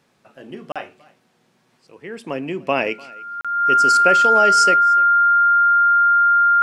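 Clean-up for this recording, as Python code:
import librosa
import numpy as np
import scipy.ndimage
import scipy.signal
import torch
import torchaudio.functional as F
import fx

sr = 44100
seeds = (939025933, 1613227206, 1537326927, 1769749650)

y = fx.notch(x, sr, hz=1400.0, q=30.0)
y = fx.fix_interpolate(y, sr, at_s=(0.72, 3.41), length_ms=36.0)
y = fx.fix_echo_inverse(y, sr, delay_ms=297, level_db=-24.0)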